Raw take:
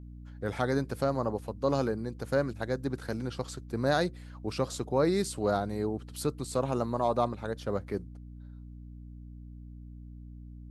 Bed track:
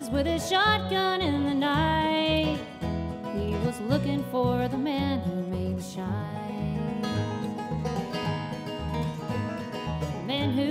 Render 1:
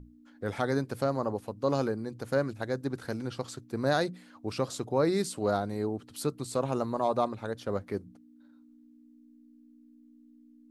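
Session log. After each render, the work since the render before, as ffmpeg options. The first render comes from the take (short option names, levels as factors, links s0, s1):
-af "bandreject=f=60:t=h:w=6,bandreject=f=120:t=h:w=6,bandreject=f=180:t=h:w=6"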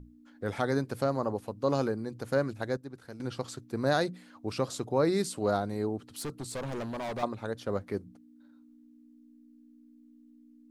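-filter_complex "[0:a]asettb=1/sr,asplit=3[s0][s1][s2];[s0]atrim=end=6.104[s3];[s1]atrim=start=6.1:end=7.23,asetpts=PTS-STARTPTS,afade=t=in:d=0.004:c=qsin,afade=t=out:st=1.126:d=0.004:c=qsin,asoftclip=type=hard:threshold=0.0224[s4];[s2]atrim=start=7.226[s5];[s3][s4]acrossfade=d=0.004:c1=hsin:c2=qsin[s6];[s6][s5]acrossfade=d=0.004:c1=qsin:c2=hsin,asplit=3[s7][s8][s9];[s7]atrim=end=2.772[s10];[s8]atrim=start=2.768:end=3.202,asetpts=PTS-STARTPTS,volume=0.299[s11];[s9]atrim=start=3.198[s12];[s10][s11]acrossfade=d=0.004:c1=hsin:c2=hsin[s13];[s13][s12]acrossfade=d=0.004:c1=hsin:c2=hsin"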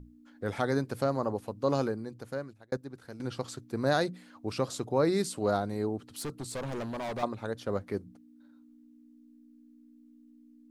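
-filter_complex "[0:a]asplit=2[s0][s1];[s0]atrim=end=2.72,asetpts=PTS-STARTPTS,afade=t=out:st=1.78:d=0.94[s2];[s1]atrim=start=2.72,asetpts=PTS-STARTPTS,afade=t=in:d=0.004:c=hsin[s3];[s2][s3]concat=n=2:v=0:a=1"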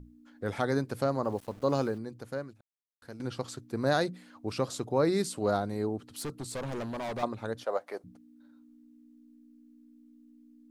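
-filter_complex "[0:a]asplit=3[s0][s1][s2];[s0]afade=t=out:st=1.24:d=0.02[s3];[s1]aeval=exprs='val(0)*gte(abs(val(0)),0.00335)':c=same,afade=t=in:st=1.24:d=0.02,afade=t=out:st=1.97:d=0.02[s4];[s2]afade=t=in:st=1.97:d=0.02[s5];[s3][s4][s5]amix=inputs=3:normalize=0,asettb=1/sr,asplit=3[s6][s7][s8];[s6]atrim=end=7.644[s9];[s7]atrim=start=7.64:end=8.04,asetpts=PTS-STARTPTS,afade=t=in:d=0.004:c=qsin,afade=t=out:st=0.396:d=0.004:c=qsin,highpass=f=660:t=q:w=2.6[s10];[s8]atrim=start=8.036[s11];[s9][s10]acrossfade=d=0.004:c1=hsin:c2=qsin[s12];[s12][s11]acrossfade=d=0.004:c1=qsin:c2=hsin,asplit=3[s13][s14][s15];[s13]atrim=end=2.61,asetpts=PTS-STARTPTS,afade=t=out:st=2.606:d=0.004:c=hsin[s16];[s14]atrim=start=2.61:end=3.02,asetpts=PTS-STARTPTS,volume=0[s17];[s15]atrim=start=3.02,asetpts=PTS-STARTPTS,afade=t=in:d=0.004:c=hsin[s18];[s16][s17][s18]concat=n=3:v=0:a=1"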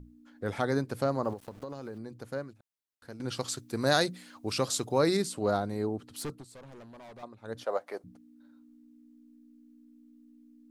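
-filter_complex "[0:a]asettb=1/sr,asplit=3[s0][s1][s2];[s0]atrim=end=1.334[s3];[s1]atrim=start=1.33:end=2.18,asetpts=PTS-STARTPTS,afade=t=in:d=0.004:c=qsin,afade=t=out:st=0.846:d=0.004:c=qsin,acompressor=threshold=0.0158:ratio=8:attack=3.2:release=140:knee=1:detection=peak[s4];[s2]atrim=start=2.176[s5];[s3][s4]acrossfade=d=0.004:c1=hsin:c2=qsin[s6];[s6][s5]acrossfade=d=0.004:c1=qsin:c2=hsin,asettb=1/sr,asplit=3[s7][s8][s9];[s7]atrim=end=3.284[s10];[s8]atrim=start=3.28:end=5.17,asetpts=PTS-STARTPTS,afade=t=in:d=0.004:c=qsin,afade=t=out:st=1.886:d=0.004:c=qsin,highshelf=f=2300:g=10.5[s11];[s9]atrim=start=5.166[s12];[s10][s11]acrossfade=d=0.004:c1=hsin:c2=qsin[s13];[s13][s12]acrossfade=d=0.004:c1=qsin:c2=hsin,asplit=3[s14][s15][s16];[s14]atrim=end=6.45,asetpts=PTS-STARTPTS,afade=t=out:st=6.31:d=0.14:silence=0.211349[s17];[s15]atrim=start=6.45:end=7.43,asetpts=PTS-STARTPTS,volume=0.211[s18];[s16]atrim=start=7.43,asetpts=PTS-STARTPTS,afade=t=in:d=0.14:silence=0.211349[s19];[s17][s18][s19]concat=n=3:v=0:a=1"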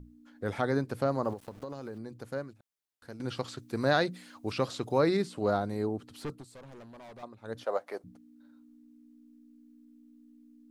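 -filter_complex "[0:a]acrossover=split=3800[s0][s1];[s1]acompressor=threshold=0.00224:ratio=4:attack=1:release=60[s2];[s0][s2]amix=inputs=2:normalize=0"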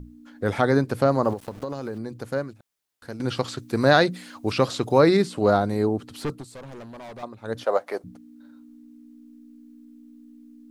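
-af "volume=2.82"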